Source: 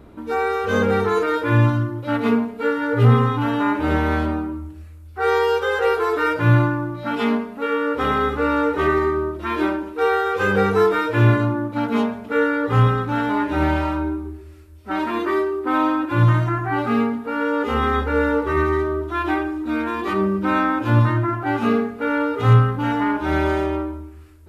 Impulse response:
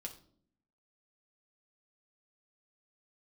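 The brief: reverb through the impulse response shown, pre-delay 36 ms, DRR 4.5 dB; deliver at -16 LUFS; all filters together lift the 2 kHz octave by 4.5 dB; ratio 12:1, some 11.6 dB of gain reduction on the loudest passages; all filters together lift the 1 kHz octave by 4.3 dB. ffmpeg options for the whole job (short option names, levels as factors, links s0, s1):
-filter_complex "[0:a]equalizer=f=1000:t=o:g=4,equalizer=f=2000:t=o:g=4.5,acompressor=threshold=0.1:ratio=12,asplit=2[s0][s1];[1:a]atrim=start_sample=2205,adelay=36[s2];[s1][s2]afir=irnorm=-1:irlink=0,volume=0.891[s3];[s0][s3]amix=inputs=2:normalize=0,volume=2.11"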